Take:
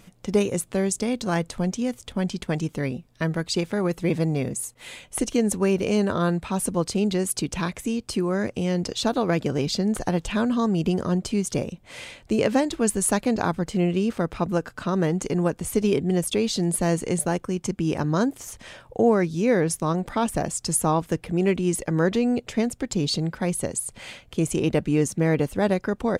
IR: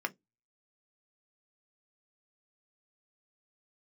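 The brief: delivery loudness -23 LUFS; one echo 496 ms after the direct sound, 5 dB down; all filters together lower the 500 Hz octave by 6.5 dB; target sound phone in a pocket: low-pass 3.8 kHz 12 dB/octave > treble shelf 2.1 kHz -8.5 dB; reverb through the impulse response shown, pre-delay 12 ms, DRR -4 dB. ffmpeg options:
-filter_complex "[0:a]equalizer=f=500:t=o:g=-8,aecho=1:1:496:0.562,asplit=2[s0][s1];[1:a]atrim=start_sample=2205,adelay=12[s2];[s1][s2]afir=irnorm=-1:irlink=0,volume=0.891[s3];[s0][s3]amix=inputs=2:normalize=0,lowpass=3800,highshelf=f=2100:g=-8.5"

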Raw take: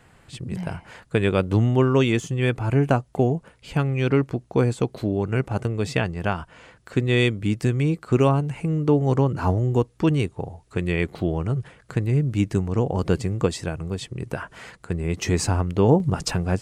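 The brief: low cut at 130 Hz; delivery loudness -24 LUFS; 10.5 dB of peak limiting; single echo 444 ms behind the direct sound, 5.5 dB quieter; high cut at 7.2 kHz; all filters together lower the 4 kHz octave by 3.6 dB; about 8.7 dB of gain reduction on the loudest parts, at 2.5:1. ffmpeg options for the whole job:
-af "highpass=130,lowpass=7200,equalizer=f=4000:t=o:g=-4.5,acompressor=threshold=0.0447:ratio=2.5,alimiter=limit=0.075:level=0:latency=1,aecho=1:1:444:0.531,volume=2.99"

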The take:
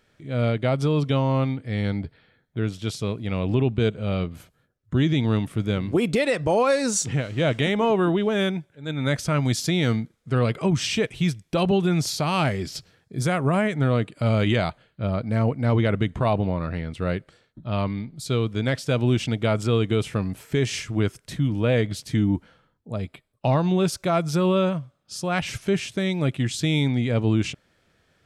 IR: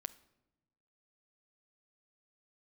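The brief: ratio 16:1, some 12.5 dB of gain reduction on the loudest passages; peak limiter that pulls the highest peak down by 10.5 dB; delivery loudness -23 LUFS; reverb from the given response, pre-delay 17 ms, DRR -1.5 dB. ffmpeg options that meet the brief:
-filter_complex "[0:a]acompressor=threshold=0.0355:ratio=16,alimiter=level_in=1.78:limit=0.0631:level=0:latency=1,volume=0.562,asplit=2[s0][s1];[1:a]atrim=start_sample=2205,adelay=17[s2];[s1][s2]afir=irnorm=-1:irlink=0,volume=1.68[s3];[s0][s3]amix=inputs=2:normalize=0,volume=3.55"

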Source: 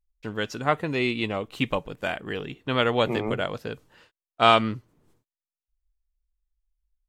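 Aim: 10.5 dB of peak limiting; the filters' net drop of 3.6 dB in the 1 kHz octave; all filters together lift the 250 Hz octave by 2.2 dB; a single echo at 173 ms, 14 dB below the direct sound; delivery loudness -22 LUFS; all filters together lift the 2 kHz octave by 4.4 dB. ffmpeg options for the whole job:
-af "equalizer=f=250:t=o:g=3,equalizer=f=1000:t=o:g=-8.5,equalizer=f=2000:t=o:g=8,alimiter=limit=0.224:level=0:latency=1,aecho=1:1:173:0.2,volume=1.88"

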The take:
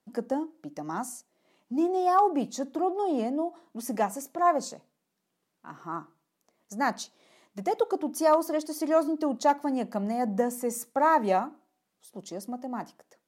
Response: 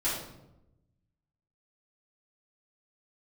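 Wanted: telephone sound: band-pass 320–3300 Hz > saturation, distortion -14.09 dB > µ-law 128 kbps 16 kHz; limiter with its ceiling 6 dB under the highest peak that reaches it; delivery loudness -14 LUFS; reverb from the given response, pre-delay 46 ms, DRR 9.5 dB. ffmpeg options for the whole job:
-filter_complex "[0:a]alimiter=limit=0.126:level=0:latency=1,asplit=2[s0][s1];[1:a]atrim=start_sample=2205,adelay=46[s2];[s1][s2]afir=irnorm=-1:irlink=0,volume=0.133[s3];[s0][s3]amix=inputs=2:normalize=0,highpass=320,lowpass=3300,asoftclip=threshold=0.0631,volume=9.44" -ar 16000 -c:a pcm_mulaw

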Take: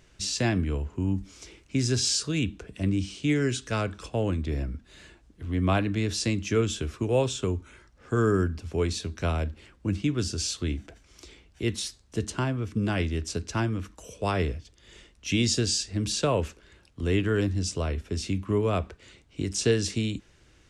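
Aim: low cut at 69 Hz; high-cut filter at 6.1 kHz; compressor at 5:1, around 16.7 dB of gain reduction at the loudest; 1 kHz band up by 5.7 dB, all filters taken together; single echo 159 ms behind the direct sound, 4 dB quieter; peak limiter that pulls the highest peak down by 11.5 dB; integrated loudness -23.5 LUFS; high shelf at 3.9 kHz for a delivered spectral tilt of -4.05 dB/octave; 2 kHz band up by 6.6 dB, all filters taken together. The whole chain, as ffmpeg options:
-af "highpass=69,lowpass=6100,equalizer=f=1000:t=o:g=5.5,equalizer=f=2000:t=o:g=5,highshelf=f=3900:g=7.5,acompressor=threshold=0.0141:ratio=5,alimiter=level_in=2.66:limit=0.0631:level=0:latency=1,volume=0.376,aecho=1:1:159:0.631,volume=7.94"

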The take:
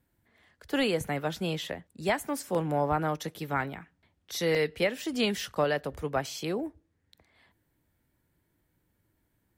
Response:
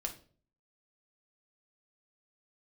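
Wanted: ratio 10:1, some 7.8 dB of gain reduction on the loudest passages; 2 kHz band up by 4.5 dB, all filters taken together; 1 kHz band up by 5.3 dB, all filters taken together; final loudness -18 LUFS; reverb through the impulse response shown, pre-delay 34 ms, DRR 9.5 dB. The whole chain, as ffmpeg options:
-filter_complex "[0:a]equalizer=f=1000:t=o:g=6.5,equalizer=f=2000:t=o:g=3.5,acompressor=threshold=0.0501:ratio=10,asplit=2[s0][s1];[1:a]atrim=start_sample=2205,adelay=34[s2];[s1][s2]afir=irnorm=-1:irlink=0,volume=0.335[s3];[s0][s3]amix=inputs=2:normalize=0,volume=5.31"

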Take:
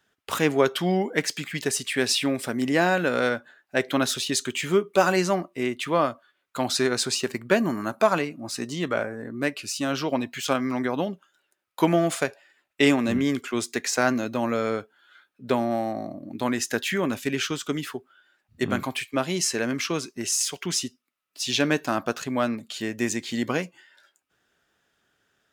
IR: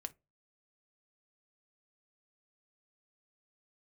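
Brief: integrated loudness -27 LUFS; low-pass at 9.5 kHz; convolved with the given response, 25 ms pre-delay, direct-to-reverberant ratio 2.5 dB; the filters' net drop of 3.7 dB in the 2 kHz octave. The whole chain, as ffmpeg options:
-filter_complex "[0:a]lowpass=9500,equalizer=f=2000:t=o:g=-5,asplit=2[s0][s1];[1:a]atrim=start_sample=2205,adelay=25[s2];[s1][s2]afir=irnorm=-1:irlink=0,volume=1.06[s3];[s0][s3]amix=inputs=2:normalize=0,volume=0.75"

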